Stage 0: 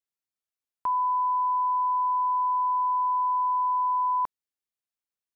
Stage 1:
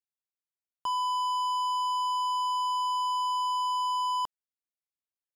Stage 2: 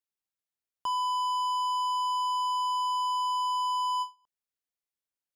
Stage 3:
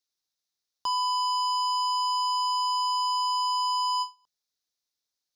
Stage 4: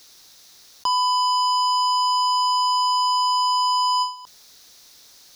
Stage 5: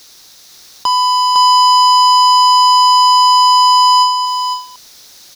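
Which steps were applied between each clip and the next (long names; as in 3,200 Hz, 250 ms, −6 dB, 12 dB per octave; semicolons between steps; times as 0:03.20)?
leveller curve on the samples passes 3; level −5.5 dB
every ending faded ahead of time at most 270 dB per second
flat-topped bell 4,800 Hz +12 dB 1 octave; mains-hum notches 50/100/150/200 Hz; level +1.5 dB
envelope flattener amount 50%; level +6.5 dB
in parallel at −6 dB: asymmetric clip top −21.5 dBFS, bottom −16.5 dBFS; on the sum: single-tap delay 506 ms −4.5 dB; level +4.5 dB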